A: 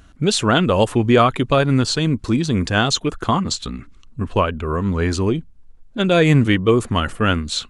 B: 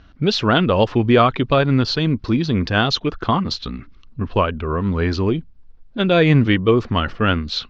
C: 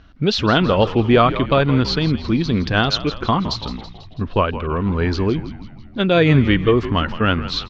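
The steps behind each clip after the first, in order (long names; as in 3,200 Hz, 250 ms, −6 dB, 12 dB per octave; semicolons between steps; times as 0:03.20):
Butterworth low-pass 5,400 Hz 48 dB per octave
echo with shifted repeats 164 ms, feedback 57%, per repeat −77 Hz, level −13 dB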